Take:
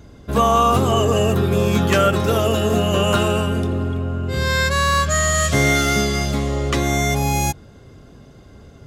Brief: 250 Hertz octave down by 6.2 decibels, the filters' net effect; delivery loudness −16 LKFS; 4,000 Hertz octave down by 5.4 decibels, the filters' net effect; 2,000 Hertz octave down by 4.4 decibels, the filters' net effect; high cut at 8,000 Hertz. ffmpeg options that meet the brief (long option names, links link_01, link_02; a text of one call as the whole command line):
ffmpeg -i in.wav -af "lowpass=8000,equalizer=frequency=250:width_type=o:gain=-9,equalizer=frequency=2000:width_type=o:gain=-4,equalizer=frequency=4000:width_type=o:gain=-5.5,volume=5dB" out.wav